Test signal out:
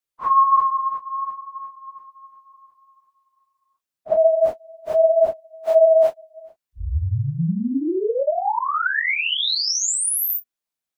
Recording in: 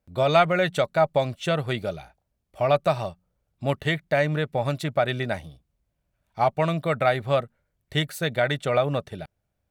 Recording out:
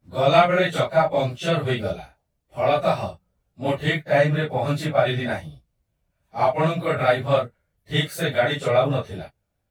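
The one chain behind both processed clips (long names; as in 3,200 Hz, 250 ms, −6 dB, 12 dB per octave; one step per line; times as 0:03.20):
random phases in long frames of 100 ms
level +2.5 dB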